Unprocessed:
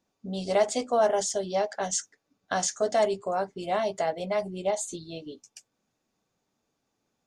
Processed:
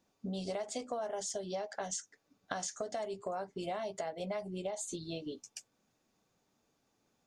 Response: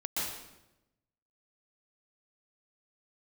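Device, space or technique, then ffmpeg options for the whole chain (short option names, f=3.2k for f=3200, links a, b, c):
serial compression, leveller first: -af "acompressor=threshold=-26dB:ratio=2.5,acompressor=threshold=-38dB:ratio=5,volume=1.5dB"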